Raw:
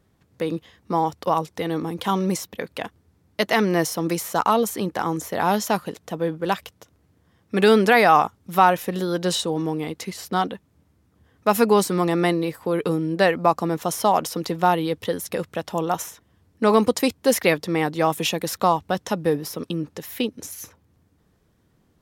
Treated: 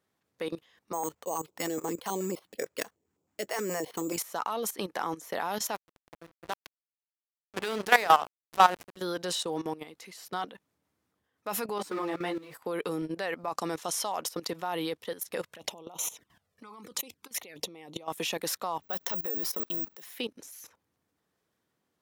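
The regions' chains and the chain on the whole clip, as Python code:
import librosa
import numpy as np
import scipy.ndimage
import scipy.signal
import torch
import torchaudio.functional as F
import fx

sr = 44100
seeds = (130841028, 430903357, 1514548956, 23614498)

y = fx.chain(x, sr, fx.peak_eq(hz=410.0, db=8.0, octaves=1.5),
    fx.resample_bad(factor=6, down='filtered', up='hold'),
    fx.filter_held_notch(hz=9.4, low_hz=250.0, high_hz=1800.0), at=(0.93, 4.18))
y = fx.chain(y, sr, fx.high_shelf(hz=3500.0, db=9.0),
    fx.hum_notches(base_hz=50, count=10),
    fx.backlash(play_db=-14.0), at=(5.75, 8.97))
y = fx.chain(y, sr, fx.zero_step(step_db=-32.0),
    fx.high_shelf(hz=4300.0, db=-10.0),
    fx.ensemble(), at=(11.78, 12.54))
y = fx.chain(y, sr, fx.lowpass(hz=9800.0, slope=12),
    fx.high_shelf(hz=3000.0, db=8.5), at=(13.53, 14.16))
y = fx.chain(y, sr, fx.over_compress(threshold_db=-30.0, ratio=-1.0),
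    fx.env_flanger(rest_ms=2.1, full_db=-25.0), at=(15.46, 18.08))
y = fx.chain(y, sr, fx.highpass(hz=110.0, slope=6),
    fx.transient(attack_db=-6, sustain_db=2),
    fx.resample_bad(factor=2, down='filtered', up='zero_stuff'), at=(18.82, 20.14))
y = fx.highpass(y, sr, hz=620.0, slope=6)
y = fx.level_steps(y, sr, step_db=16)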